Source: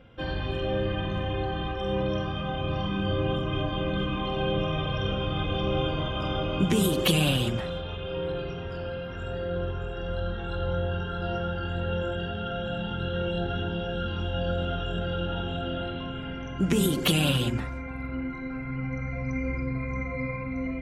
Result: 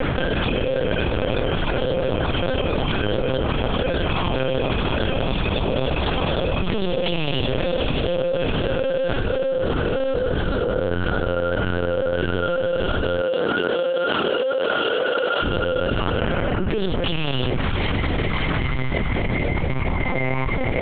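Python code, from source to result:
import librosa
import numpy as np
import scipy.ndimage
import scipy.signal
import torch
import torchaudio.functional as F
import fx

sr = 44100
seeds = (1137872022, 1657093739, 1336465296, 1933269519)

y = x + 0.68 * np.pad(x, (int(2.0 * sr / 1000.0), 0))[:len(x)]
y = fx.echo_diffused(y, sr, ms=601, feedback_pct=79, wet_db=-14.5)
y = fx.lpc_vocoder(y, sr, seeds[0], excitation='pitch_kept', order=8)
y = fx.chopper(y, sr, hz=6.6, depth_pct=65, duty_pct=25)
y = fx.highpass(y, sr, hz=fx.line((13.2, 230.0), (15.42, 570.0)), slope=12, at=(13.2, 15.42), fade=0.02)
y = fx.env_flatten(y, sr, amount_pct=100)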